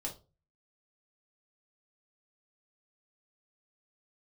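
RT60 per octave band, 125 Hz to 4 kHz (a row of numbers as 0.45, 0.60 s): 0.55, 0.35, 0.35, 0.25, 0.20, 0.25 s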